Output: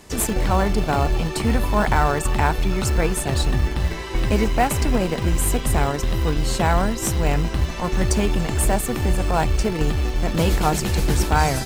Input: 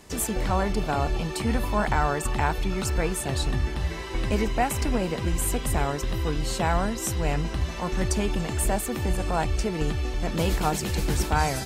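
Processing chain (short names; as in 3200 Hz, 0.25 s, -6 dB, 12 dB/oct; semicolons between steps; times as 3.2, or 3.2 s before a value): in parallel at -8.5 dB: Schmitt trigger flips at -23 dBFS; on the sum: modulation noise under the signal 35 dB; gain +4 dB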